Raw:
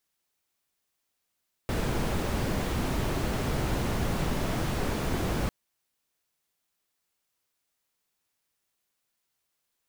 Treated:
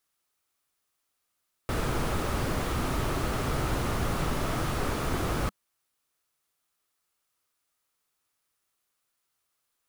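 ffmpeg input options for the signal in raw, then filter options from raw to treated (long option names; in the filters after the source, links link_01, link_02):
-f lavfi -i "anoisesrc=color=brown:amplitude=0.186:duration=3.8:sample_rate=44100:seed=1"
-af "equalizer=frequency=200:width_type=o:width=0.33:gain=-5,equalizer=frequency=1250:width_type=o:width=0.33:gain=7,equalizer=frequency=10000:width_type=o:width=0.33:gain=3"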